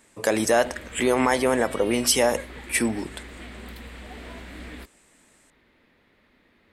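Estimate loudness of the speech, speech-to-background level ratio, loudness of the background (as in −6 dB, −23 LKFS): −23.0 LKFS, 17.5 dB, −40.5 LKFS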